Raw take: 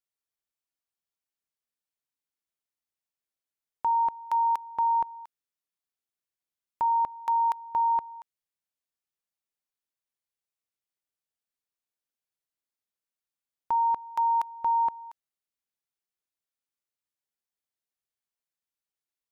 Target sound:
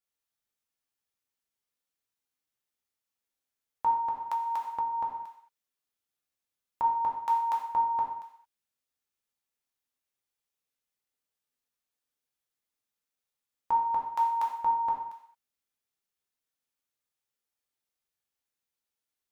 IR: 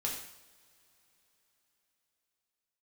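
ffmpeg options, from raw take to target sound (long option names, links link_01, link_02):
-filter_complex "[1:a]atrim=start_sample=2205,afade=type=out:start_time=0.28:duration=0.01,atrim=end_sample=12789[link_01];[0:a][link_01]afir=irnorm=-1:irlink=0,asettb=1/sr,asplit=3[link_02][link_03][link_04];[link_02]atrim=end=3.994[link_05];[link_03]atrim=start=3.99:end=6.84,asetpts=PTS-STARTPTS,afade=type=in:duration=0.004:curve=qsin,afade=type=out:start_time=2.846:duration=0.004:curve=qsin,acompressor=threshold=-28dB:ratio=6[link_06];[link_04]atrim=start=6.836[link_07];[link_05][link_06]acrossfade=duration=0.004:curve1=hsin:curve2=qsin[link_08];[link_08][link_07]acrossfade=duration=0.004:curve1=qsin:curve2=hsin"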